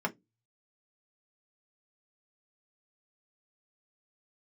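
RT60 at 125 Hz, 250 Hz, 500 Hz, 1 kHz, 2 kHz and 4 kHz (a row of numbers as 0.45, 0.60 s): 0.45, 0.30, 0.20, 0.15, 0.15, 0.10 s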